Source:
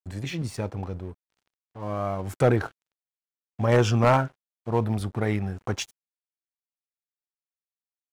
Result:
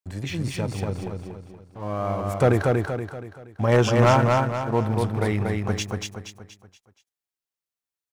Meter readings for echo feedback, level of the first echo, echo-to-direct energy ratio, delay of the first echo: 42%, -3.0 dB, -2.0 dB, 0.237 s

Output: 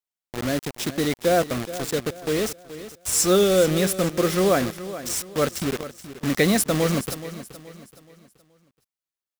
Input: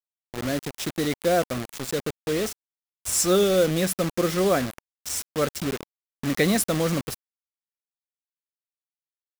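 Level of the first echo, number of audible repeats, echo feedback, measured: -14.0 dB, 3, 39%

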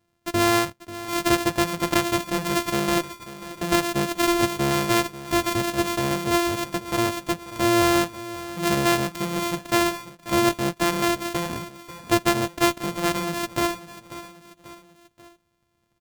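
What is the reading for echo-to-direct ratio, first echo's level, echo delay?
-14.0 dB, -15.0 dB, 0.539 s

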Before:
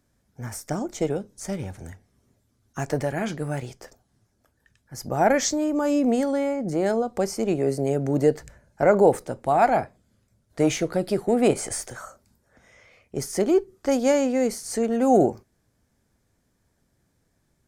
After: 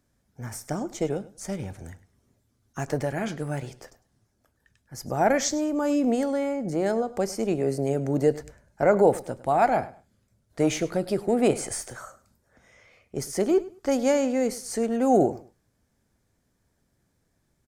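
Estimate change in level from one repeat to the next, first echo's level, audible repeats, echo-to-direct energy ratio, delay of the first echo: -13.0 dB, -18.0 dB, 2, -18.0 dB, 0.103 s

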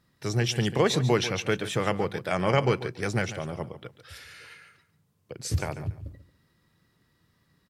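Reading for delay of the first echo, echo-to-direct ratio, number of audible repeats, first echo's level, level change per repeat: 0.142 s, -13.5 dB, 2, -13.5 dB, -13.5 dB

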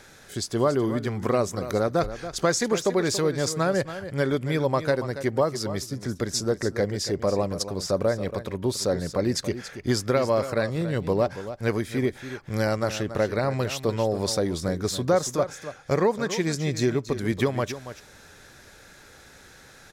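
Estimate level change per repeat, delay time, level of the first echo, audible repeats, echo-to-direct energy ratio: no steady repeat, 0.281 s, -12.0 dB, 1, -12.0 dB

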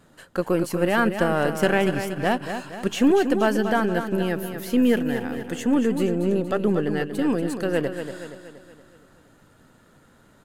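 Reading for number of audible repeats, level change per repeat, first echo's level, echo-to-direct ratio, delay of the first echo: 5, -6.0 dB, -8.5 dB, -7.0 dB, 0.236 s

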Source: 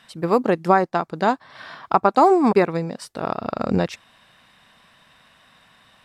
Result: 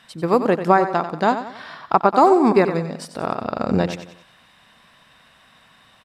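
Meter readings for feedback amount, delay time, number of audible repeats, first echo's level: 42%, 92 ms, 4, -10.5 dB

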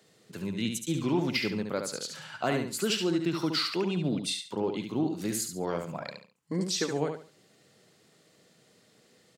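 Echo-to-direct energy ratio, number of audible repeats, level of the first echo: -5.5 dB, 3, -6.0 dB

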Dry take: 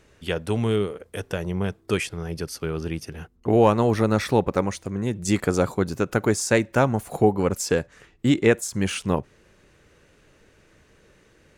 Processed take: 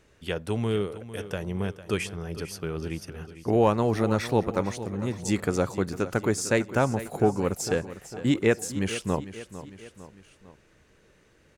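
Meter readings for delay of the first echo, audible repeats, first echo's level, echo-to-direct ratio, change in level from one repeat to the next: 0.452 s, 3, -14.0 dB, -12.5 dB, -5.5 dB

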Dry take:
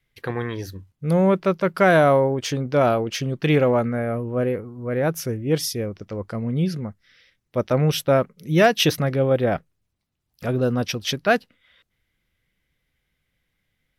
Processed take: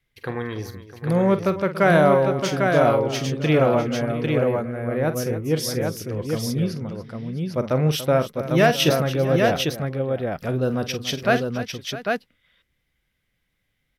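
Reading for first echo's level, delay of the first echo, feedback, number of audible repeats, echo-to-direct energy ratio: -11.5 dB, 46 ms, no steady repeat, 4, -2.5 dB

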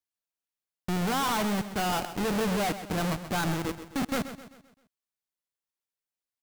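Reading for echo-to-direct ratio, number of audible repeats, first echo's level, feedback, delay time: -11.0 dB, 4, -12.0 dB, 45%, 0.13 s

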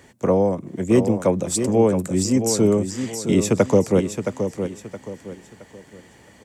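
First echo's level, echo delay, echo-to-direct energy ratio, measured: -8.0 dB, 0.669 s, -7.5 dB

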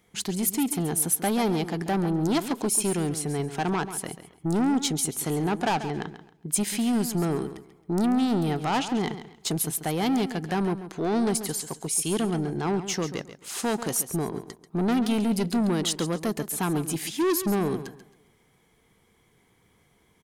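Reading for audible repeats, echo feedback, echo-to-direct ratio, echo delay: 2, no steady repeat, -11.5 dB, 0.138 s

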